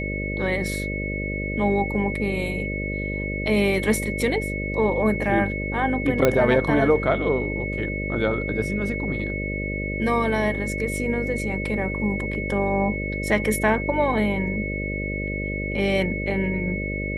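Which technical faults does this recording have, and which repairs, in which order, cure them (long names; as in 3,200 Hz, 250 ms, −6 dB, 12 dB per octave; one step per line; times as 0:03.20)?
mains buzz 50 Hz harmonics 12 −29 dBFS
whistle 2,200 Hz −30 dBFS
0:06.25: click −5 dBFS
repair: click removal
notch filter 2,200 Hz, Q 30
hum removal 50 Hz, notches 12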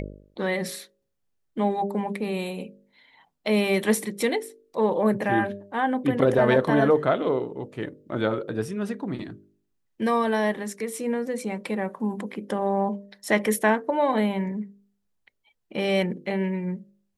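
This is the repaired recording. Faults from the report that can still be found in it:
none of them is left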